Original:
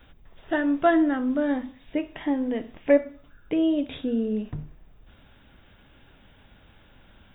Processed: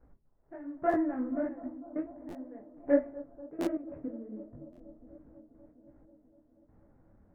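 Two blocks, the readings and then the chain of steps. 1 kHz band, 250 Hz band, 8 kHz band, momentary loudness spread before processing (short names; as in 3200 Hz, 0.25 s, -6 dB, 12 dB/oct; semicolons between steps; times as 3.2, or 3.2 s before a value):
-8.0 dB, -10.0 dB, n/a, 11 LU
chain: median filter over 25 samples; elliptic low-pass 1900 Hz, stop band 60 dB; bell 180 Hz +3 dB 2.5 oct; step gate "x....xxxx.x." 92 bpm -12 dB; on a send: analogue delay 0.244 s, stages 2048, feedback 81%, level -17.5 dB; on the sum: stuck buffer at 0.89/2.28/3.6/4.72, samples 512, times 3; detuned doubles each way 46 cents; gain -4.5 dB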